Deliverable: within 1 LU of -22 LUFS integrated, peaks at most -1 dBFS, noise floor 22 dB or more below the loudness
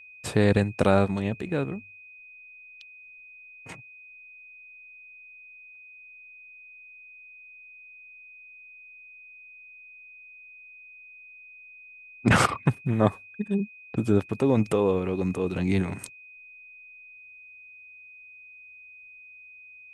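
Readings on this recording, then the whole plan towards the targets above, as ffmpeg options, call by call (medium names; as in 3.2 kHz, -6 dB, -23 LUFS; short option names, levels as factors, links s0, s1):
steady tone 2.5 kHz; tone level -46 dBFS; loudness -25.5 LUFS; peak level -5.0 dBFS; loudness target -22.0 LUFS
-> -af "bandreject=f=2500:w=30"
-af "volume=1.5"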